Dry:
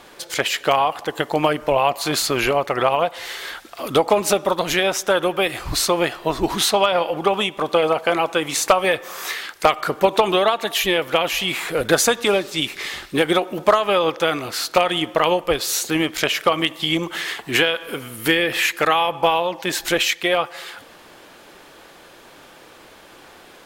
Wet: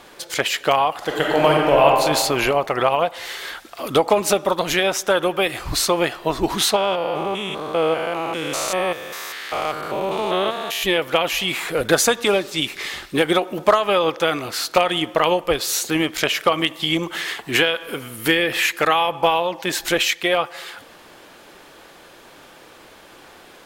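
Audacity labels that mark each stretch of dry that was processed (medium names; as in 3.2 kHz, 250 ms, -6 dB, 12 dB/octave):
0.970000	1.850000	reverb throw, RT60 1.9 s, DRR -2.5 dB
6.760000	10.830000	spectrogram pixelated in time every 200 ms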